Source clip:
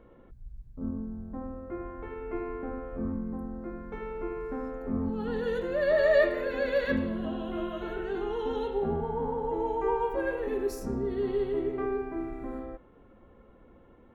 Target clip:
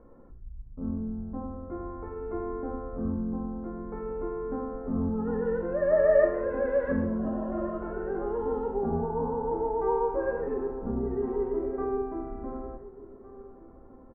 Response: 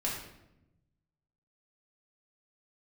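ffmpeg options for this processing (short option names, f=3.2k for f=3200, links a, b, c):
-filter_complex "[0:a]lowpass=f=1.4k:w=0.5412,lowpass=f=1.4k:w=1.3066,asplit=2[a][b];[b]adelay=1458,volume=-17dB,highshelf=f=4k:g=-32.8[c];[a][c]amix=inputs=2:normalize=0,asplit=2[d][e];[1:a]atrim=start_sample=2205,atrim=end_sample=6174[f];[e][f]afir=irnorm=-1:irlink=0,volume=-8dB[g];[d][g]amix=inputs=2:normalize=0,volume=-2dB"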